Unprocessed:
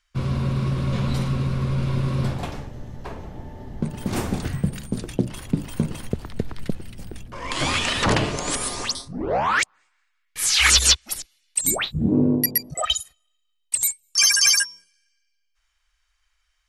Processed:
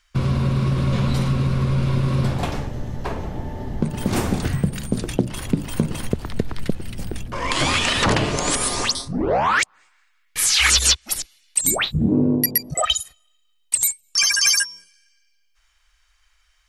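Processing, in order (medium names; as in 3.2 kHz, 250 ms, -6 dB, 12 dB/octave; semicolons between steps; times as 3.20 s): 14.01–14.46 s: treble shelf 7.7 kHz -9.5 dB; compression 2:1, threshold -28 dBFS, peak gain reduction 9 dB; trim +8 dB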